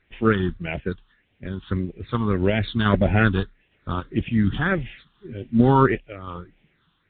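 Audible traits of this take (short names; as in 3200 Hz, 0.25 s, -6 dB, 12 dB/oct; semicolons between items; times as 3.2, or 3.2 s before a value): a quantiser's noise floor 10-bit, dither triangular; random-step tremolo; phasing stages 6, 1.7 Hz, lowest notch 570–1200 Hz; µ-law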